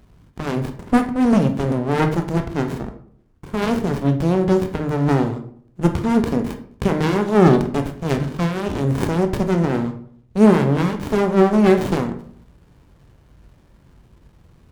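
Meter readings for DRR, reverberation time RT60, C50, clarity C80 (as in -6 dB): 6.0 dB, 0.65 s, 10.5 dB, 14.5 dB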